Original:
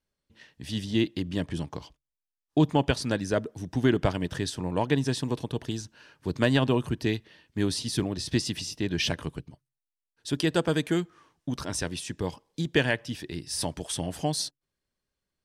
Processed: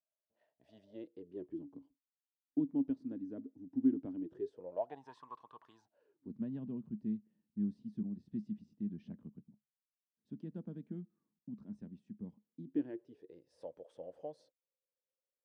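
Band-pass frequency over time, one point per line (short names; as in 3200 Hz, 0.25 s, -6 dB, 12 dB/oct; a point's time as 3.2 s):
band-pass, Q 13
0.8 s 650 Hz
1.75 s 270 Hz
4.14 s 270 Hz
5.22 s 1100 Hz
5.73 s 1100 Hz
6.34 s 210 Hz
12.45 s 210 Hz
13.37 s 520 Hz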